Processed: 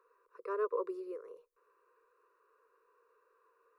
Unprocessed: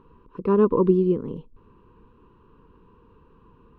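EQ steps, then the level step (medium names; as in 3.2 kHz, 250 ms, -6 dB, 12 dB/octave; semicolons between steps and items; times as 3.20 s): inverse Chebyshev high-pass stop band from 240 Hz, stop band 40 dB; treble shelf 2.4 kHz +8.5 dB; static phaser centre 860 Hz, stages 6; -7.5 dB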